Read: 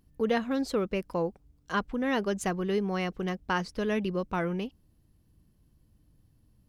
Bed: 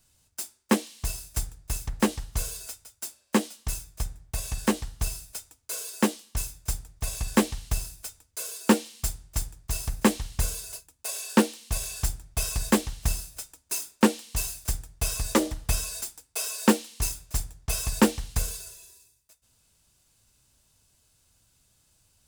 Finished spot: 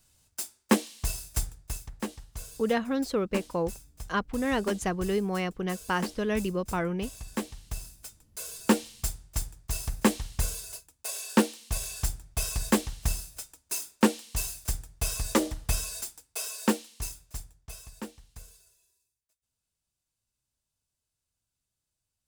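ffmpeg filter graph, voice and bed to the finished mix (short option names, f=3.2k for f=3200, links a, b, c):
-filter_complex "[0:a]adelay=2400,volume=0.5dB[a];[1:a]volume=9dB,afade=t=out:st=1.45:d=0.46:silence=0.281838,afade=t=in:st=7.46:d=1.4:silence=0.354813,afade=t=out:st=16.01:d=1.92:silence=0.125893[b];[a][b]amix=inputs=2:normalize=0"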